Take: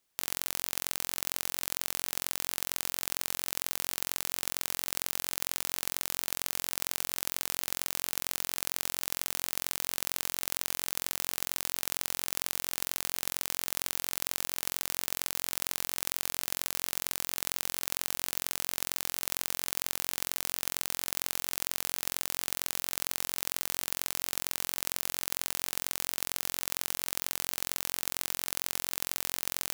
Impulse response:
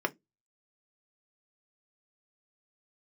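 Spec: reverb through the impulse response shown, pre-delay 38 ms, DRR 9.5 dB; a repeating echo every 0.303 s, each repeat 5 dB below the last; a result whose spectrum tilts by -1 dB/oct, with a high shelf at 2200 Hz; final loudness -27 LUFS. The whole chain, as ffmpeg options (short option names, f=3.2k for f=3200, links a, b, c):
-filter_complex "[0:a]highshelf=f=2.2k:g=-7.5,aecho=1:1:303|606|909|1212|1515|1818|2121:0.562|0.315|0.176|0.0988|0.0553|0.031|0.0173,asplit=2[a][b];[1:a]atrim=start_sample=2205,adelay=38[c];[b][c]afir=irnorm=-1:irlink=0,volume=-17.5dB[d];[a][d]amix=inputs=2:normalize=0,volume=9.5dB"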